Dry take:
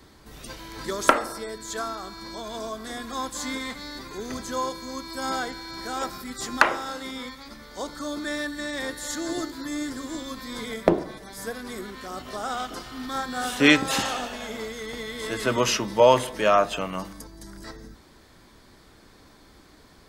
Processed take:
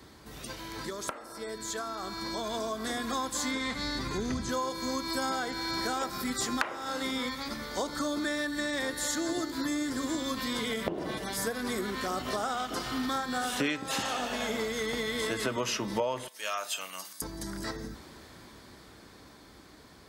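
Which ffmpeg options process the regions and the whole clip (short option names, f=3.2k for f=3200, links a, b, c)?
-filter_complex "[0:a]asettb=1/sr,asplit=3[a][b][c];[a]atrim=end=3.514[d];[b]atrim=start=3.51:end=4.49,asetpts=PTS-STARTPTS,afade=t=in:d=0.004:c=qsin,afade=t=out:st=0.976:d=0.004:c=qsin,asubboost=boost=10:cutoff=230,acrossover=split=7600[e][f];[f]acompressor=threshold=-53dB:ratio=4:attack=1:release=60[g];[e][g]amix=inputs=2:normalize=0,lowpass=11k[h];[c]atrim=start=4.486[i];[d][h]acrossfade=d=0.004:c1=hsin:c2=qsin[j];[j][i]acrossfade=d=0.004:c1=qsin:c2=hsin,asettb=1/sr,asplit=3[k][l][m];[k]atrim=end=10.374[n];[l]atrim=start=10.37:end=11.37,asetpts=PTS-STARTPTS,afade=t=in:d=0.004:c=qsin,afade=t=out:st=0.996:d=0.004:c=qsin,equalizer=f=2.9k:t=o:w=0.21:g=11,acompressor=threshold=-33dB:ratio=2:attack=3.2:release=140:knee=1:detection=peak[o];[m]atrim=start=11.366[p];[n][o]acrossfade=d=0.004:c1=hsin:c2=qsin[q];[q][p]acrossfade=d=0.004:c1=qsin:c2=hsin,asettb=1/sr,asplit=3[r][s][t];[r]atrim=end=16.284[u];[s]atrim=start=16.28:end=17.22,asetpts=PTS-STARTPTS,afade=t=in:d=0.004:c=qsin,afade=t=out:st=0.936:d=0.004:c=qsin,aderivative,asplit=2[v][w];[w]adelay=32,volume=-13.5dB[x];[v][x]amix=inputs=2:normalize=0,atrim=end_sample=41454[y];[t]atrim=start=17.216[z];[u][y]acrossfade=d=0.004:c1=hsin:c2=qsin[aa];[aa][z]acrossfade=d=0.004:c1=qsin:c2=hsin,acompressor=threshold=-35dB:ratio=8,highpass=57,dynaudnorm=f=410:g=11:m=6.5dB"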